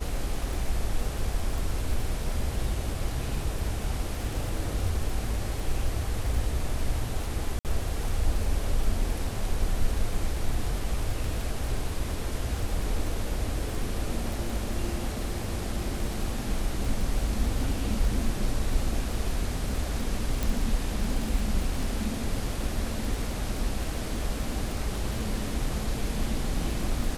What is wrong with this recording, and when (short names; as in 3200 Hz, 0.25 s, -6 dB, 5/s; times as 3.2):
crackle 25/s -31 dBFS
7.59–7.65 gap 58 ms
20.43 pop